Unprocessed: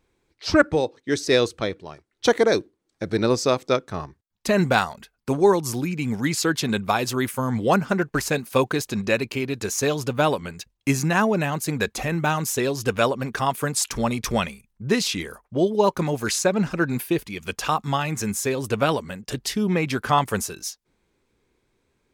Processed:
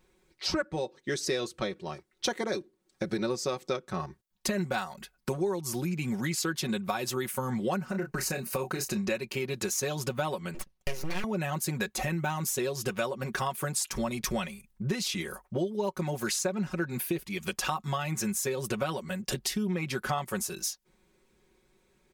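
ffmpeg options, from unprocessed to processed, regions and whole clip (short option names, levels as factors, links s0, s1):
-filter_complex "[0:a]asettb=1/sr,asplit=3[s0][s1][s2];[s0]atrim=end=7.844[s3];[s1]atrim=start=7.84:end=9.07,asetpts=PTS-STARTPTS,afade=t=in:d=0.004:c=qsin,afade=t=out:st=1.226:d=0.004:c=qsin,asplit=2[s4][s5];[s5]adelay=30,volume=0.335[s6];[s4][s6]amix=inputs=2:normalize=0,atrim=end_sample=54243,acompressor=threshold=0.0631:ratio=3:attack=3.2:release=140:knee=1:detection=peak,bandreject=f=3400:w=5.5[s7];[s2]atrim=start=9.066[s8];[s3][s7]acrossfade=d=0.004:c1=hsin:c2=qsin[s9];[s9][s8]acrossfade=d=0.004:c1=qsin:c2=hsin,asettb=1/sr,asplit=3[s10][s11][s12];[s10]atrim=end=10.544[s13];[s11]atrim=start=10.54:end=11.24,asetpts=PTS-STARTPTS,afade=t=in:d=0.004:c=qsin,afade=t=out:st=0.696:d=0.004:c=qsin,lowpass=11000,equalizer=f=7700:t=o:w=0.33:g=-14.5,aeval=exprs='abs(val(0))':c=same[s14];[s12]atrim=start=11.236[s15];[s13][s14]acrossfade=d=0.004:c1=hsin:c2=qsin[s16];[s16][s15]acrossfade=d=0.004:c1=qsin:c2=hsin,highshelf=f=8900:g=5,aecho=1:1:5.4:0.73,acompressor=threshold=0.0355:ratio=5"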